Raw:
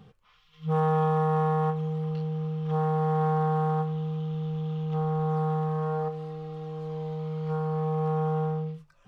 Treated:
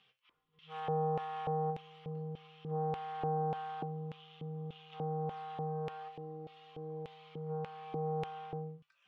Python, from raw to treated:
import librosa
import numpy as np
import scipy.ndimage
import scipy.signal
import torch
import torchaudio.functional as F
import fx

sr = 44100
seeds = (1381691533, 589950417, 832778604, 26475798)

y = fx.comb_fb(x, sr, f0_hz=130.0, decay_s=0.25, harmonics='all', damping=0.0, mix_pct=70)
y = fx.filter_lfo_bandpass(y, sr, shape='square', hz=1.7, low_hz=320.0, high_hz=2800.0, q=2.5)
y = y * 10.0 ** (8.5 / 20.0)